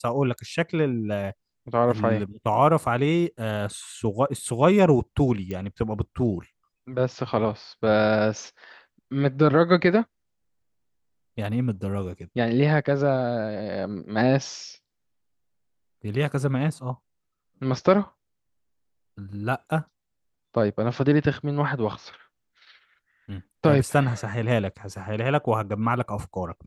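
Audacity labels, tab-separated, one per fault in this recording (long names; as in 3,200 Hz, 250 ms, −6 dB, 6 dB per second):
5.510000	5.510000	click −20 dBFS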